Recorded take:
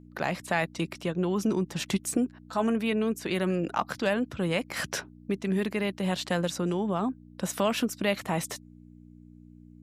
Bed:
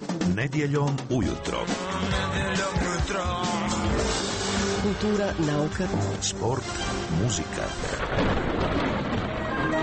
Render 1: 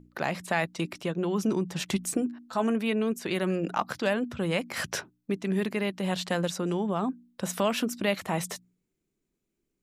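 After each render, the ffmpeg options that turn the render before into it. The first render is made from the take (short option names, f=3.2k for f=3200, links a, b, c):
-af "bandreject=f=60:t=h:w=4,bandreject=f=120:t=h:w=4,bandreject=f=180:t=h:w=4,bandreject=f=240:t=h:w=4,bandreject=f=300:t=h:w=4"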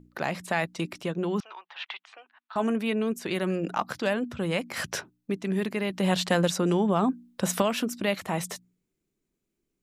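-filter_complex "[0:a]asettb=1/sr,asplit=3[a][b][c];[a]atrim=end=1.404[d];[b]atrim=start=1.4:end=2.56,asetpts=PTS-STARTPTS,afade=t=in:d=0.004:c=qsin,afade=t=out:st=1.156:d=0.004:c=qsin,asuperpass=centerf=1700:order=8:qfactor=0.59[e];[c]atrim=start=2.556[f];[d][e]acrossfade=d=0.004:c1=hsin:c2=qsin[g];[g][f]acrossfade=d=0.004:c1=qsin:c2=hsin,asettb=1/sr,asplit=3[h][i][j];[h]atrim=end=5.904[k];[i]atrim=start=5.9:end=7.62,asetpts=PTS-STARTPTS,afade=t=in:d=0.004:c=qsin,afade=t=out:st=1.716:d=0.004:c=qsin,acontrast=23[l];[j]atrim=start=7.616[m];[k][l]acrossfade=d=0.004:c1=hsin:c2=qsin[n];[n][m]acrossfade=d=0.004:c1=qsin:c2=hsin"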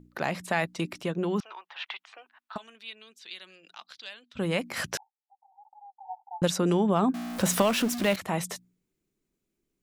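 -filter_complex "[0:a]asplit=3[a][b][c];[a]afade=t=out:st=2.56:d=0.02[d];[b]bandpass=f=3.8k:t=q:w=2.9,afade=t=in:st=2.56:d=0.02,afade=t=out:st=4.35:d=0.02[e];[c]afade=t=in:st=4.35:d=0.02[f];[d][e][f]amix=inputs=3:normalize=0,asettb=1/sr,asplit=3[g][h][i];[g]atrim=end=4.974[j];[h]atrim=start=4.97:end=6.42,asetpts=PTS-STARTPTS,afade=t=in:d=0.004:c=qsin,afade=t=out:st=1.446:d=0.004:c=qsin,asuperpass=centerf=820:order=8:qfactor=5.3[k];[i]atrim=start=6.416[l];[j][k]acrossfade=d=0.004:c1=hsin:c2=qsin[m];[m][l]acrossfade=d=0.004:c1=qsin:c2=hsin,asettb=1/sr,asplit=3[n][o][p];[n]atrim=end=7.144[q];[o]atrim=start=7.14:end=8.16,asetpts=PTS-STARTPTS,afade=t=in:d=0.004:c=qsin,afade=t=out:st=1.016:d=0.004:c=qsin,aeval=exprs='val(0)+0.5*0.0316*sgn(val(0))':c=same[r];[p]atrim=start=8.156[s];[q][r]acrossfade=d=0.004:c1=hsin:c2=qsin[t];[t][s]acrossfade=d=0.004:c1=qsin:c2=hsin"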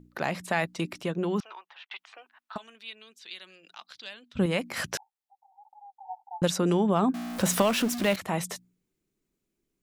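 -filter_complex "[0:a]asettb=1/sr,asplit=3[a][b][c];[a]atrim=end=3.944[d];[b]atrim=start=3.94:end=4.46,asetpts=PTS-STARTPTS,afade=t=in:d=0.004:c=qsin,afade=t=out:st=0.516:d=0.004:c=qsin,lowshelf=f=280:g=10.5[e];[c]atrim=start=4.456[f];[d][e]acrossfade=d=0.004:c1=hsin:c2=qsin[g];[g][f]acrossfade=d=0.004:c1=qsin:c2=hsin,asplit=2[h][i];[h]atrim=end=1.91,asetpts=PTS-STARTPTS,afade=t=out:st=1.4:d=0.51:c=qsin[j];[i]atrim=start=1.91,asetpts=PTS-STARTPTS,afade=t=in:d=0.004:c=hsin[k];[j][k]concat=n=2:v=0:a=1"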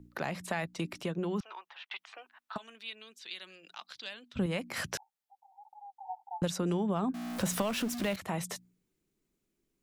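-filter_complex "[0:a]acrossover=split=130[a][b];[b]acompressor=threshold=-36dB:ratio=2[c];[a][c]amix=inputs=2:normalize=0"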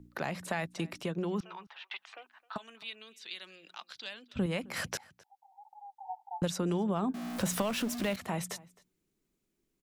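-filter_complex "[0:a]asplit=2[a][b];[b]adelay=262.4,volume=-22dB,highshelf=f=4k:g=-5.9[c];[a][c]amix=inputs=2:normalize=0"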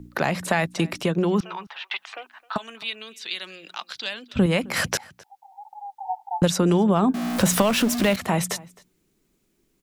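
-af "volume=12dB"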